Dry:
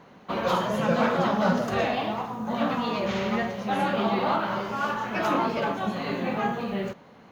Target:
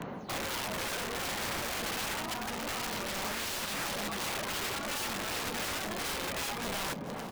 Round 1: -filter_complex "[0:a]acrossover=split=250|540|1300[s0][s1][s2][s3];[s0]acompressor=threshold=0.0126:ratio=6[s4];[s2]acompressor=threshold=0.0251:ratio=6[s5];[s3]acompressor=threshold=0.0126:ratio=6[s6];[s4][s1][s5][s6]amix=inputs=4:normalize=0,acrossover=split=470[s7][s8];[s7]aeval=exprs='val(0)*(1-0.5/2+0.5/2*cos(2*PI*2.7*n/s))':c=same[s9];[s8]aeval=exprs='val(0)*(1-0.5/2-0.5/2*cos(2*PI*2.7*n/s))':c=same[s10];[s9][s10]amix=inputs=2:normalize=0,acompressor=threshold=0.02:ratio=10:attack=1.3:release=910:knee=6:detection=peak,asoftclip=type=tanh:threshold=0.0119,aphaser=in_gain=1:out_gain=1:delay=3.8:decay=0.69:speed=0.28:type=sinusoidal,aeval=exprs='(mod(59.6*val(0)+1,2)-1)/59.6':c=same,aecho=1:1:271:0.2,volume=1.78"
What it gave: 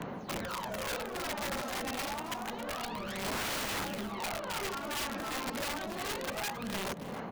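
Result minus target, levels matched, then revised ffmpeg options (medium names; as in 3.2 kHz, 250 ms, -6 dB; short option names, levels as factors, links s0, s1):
echo 169 ms early; compression: peak gain reduction +7 dB
-filter_complex "[0:a]acrossover=split=250|540|1300[s0][s1][s2][s3];[s0]acompressor=threshold=0.0126:ratio=6[s4];[s2]acompressor=threshold=0.0251:ratio=6[s5];[s3]acompressor=threshold=0.0126:ratio=6[s6];[s4][s1][s5][s6]amix=inputs=4:normalize=0,acrossover=split=470[s7][s8];[s7]aeval=exprs='val(0)*(1-0.5/2+0.5/2*cos(2*PI*2.7*n/s))':c=same[s9];[s8]aeval=exprs='val(0)*(1-0.5/2-0.5/2*cos(2*PI*2.7*n/s))':c=same[s10];[s9][s10]amix=inputs=2:normalize=0,acompressor=threshold=0.0501:ratio=10:attack=1.3:release=910:knee=6:detection=peak,asoftclip=type=tanh:threshold=0.0119,aphaser=in_gain=1:out_gain=1:delay=3.8:decay=0.69:speed=0.28:type=sinusoidal,aeval=exprs='(mod(59.6*val(0)+1,2)-1)/59.6':c=same,aecho=1:1:440:0.2,volume=1.78"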